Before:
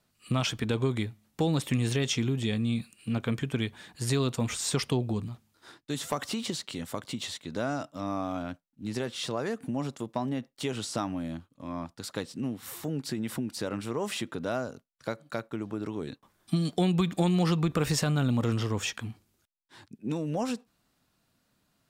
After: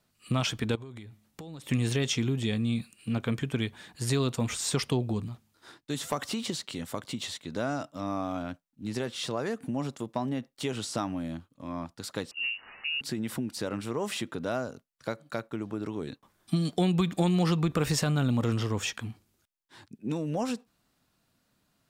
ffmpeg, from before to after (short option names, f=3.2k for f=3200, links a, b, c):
-filter_complex "[0:a]asettb=1/sr,asplit=3[a][b][c];[a]atrim=end=0.754[d];[b]atrim=start=0.75:end=1.69,asetpts=PTS-STARTPTS,afade=t=in:d=0.004:c=qsin,afade=t=out:st=0.936:d=0.004:c=qsin,acompressor=threshold=-40dB:ratio=8:attack=3.2:release=140:knee=1:detection=peak[e];[c]atrim=start=1.686[f];[d][e]acrossfade=d=0.004:c1=hsin:c2=qsin[g];[g][f]acrossfade=d=0.004:c1=qsin:c2=hsin,asettb=1/sr,asplit=3[h][i][j];[h]atrim=end=12.314[k];[i]atrim=start=12.31:end=13.01,asetpts=PTS-STARTPTS,afade=t=in:d=0.004:c=qsin,afade=t=out:st=0.696:d=0.004:c=qsin,lowpass=f=2.6k:t=q:w=0.5098,lowpass=f=2.6k:t=q:w=0.6013,lowpass=f=2.6k:t=q:w=0.9,lowpass=f=2.6k:t=q:w=2.563,afreqshift=-3000[l];[j]atrim=start=13.006[m];[k][l]acrossfade=d=0.004:c1=hsin:c2=qsin[n];[n][m]acrossfade=d=0.004:c1=qsin:c2=hsin"